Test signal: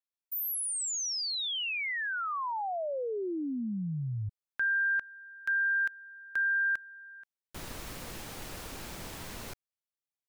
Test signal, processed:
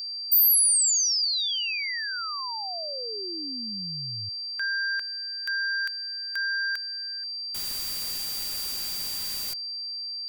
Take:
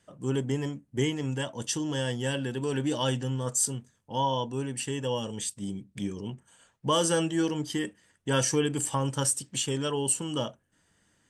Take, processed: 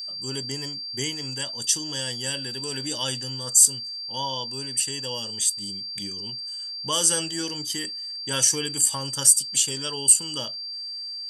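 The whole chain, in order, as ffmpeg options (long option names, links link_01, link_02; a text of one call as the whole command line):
ffmpeg -i in.wav -af "aeval=exprs='val(0)+0.0112*sin(2*PI*4700*n/s)':channel_layout=same,crystalizer=i=7:c=0,volume=-6.5dB" out.wav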